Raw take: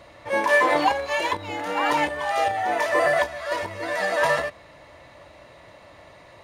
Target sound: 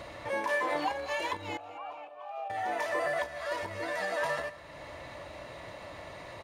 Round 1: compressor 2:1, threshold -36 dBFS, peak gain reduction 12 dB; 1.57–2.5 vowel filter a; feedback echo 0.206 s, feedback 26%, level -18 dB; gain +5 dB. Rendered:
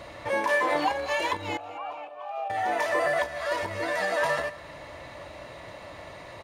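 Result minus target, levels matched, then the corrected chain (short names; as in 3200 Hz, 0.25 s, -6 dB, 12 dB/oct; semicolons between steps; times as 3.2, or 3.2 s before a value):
compressor: peak gain reduction -5.5 dB
compressor 2:1, threshold -47.5 dBFS, peak gain reduction 17.5 dB; 1.57–2.5 vowel filter a; feedback echo 0.206 s, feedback 26%, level -18 dB; gain +5 dB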